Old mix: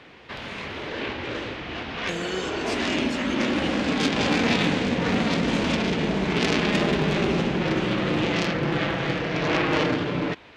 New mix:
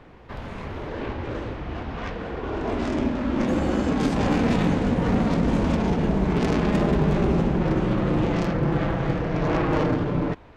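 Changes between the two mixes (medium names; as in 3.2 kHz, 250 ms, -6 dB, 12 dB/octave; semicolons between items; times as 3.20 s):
speech: entry +1.40 s; master: remove frequency weighting D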